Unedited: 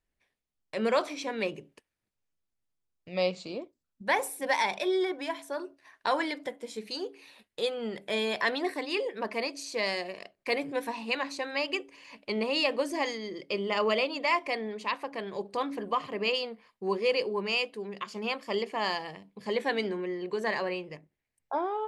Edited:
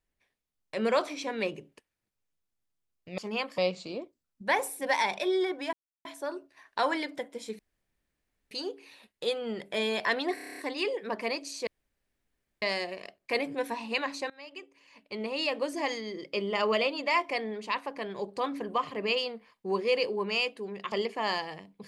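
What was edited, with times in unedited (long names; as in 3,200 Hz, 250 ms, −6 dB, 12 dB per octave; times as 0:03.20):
0:05.33: splice in silence 0.32 s
0:06.87: splice in room tone 0.92 s
0:08.70: stutter 0.03 s, 9 plays
0:09.79: splice in room tone 0.95 s
0:11.47–0:13.20: fade in, from −21.5 dB
0:18.09–0:18.49: move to 0:03.18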